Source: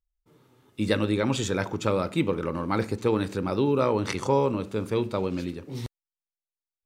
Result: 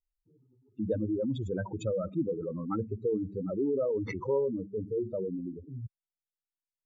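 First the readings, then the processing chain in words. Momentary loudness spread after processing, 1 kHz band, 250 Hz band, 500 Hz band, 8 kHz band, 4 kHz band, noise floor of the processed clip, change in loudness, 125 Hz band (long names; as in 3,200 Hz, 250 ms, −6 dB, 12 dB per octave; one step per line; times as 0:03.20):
10 LU, −14.5 dB, −6.0 dB, −4.5 dB, below −15 dB, below −20 dB, below −85 dBFS, −6.0 dB, −7.5 dB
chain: expanding power law on the bin magnitudes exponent 3.6
level −5 dB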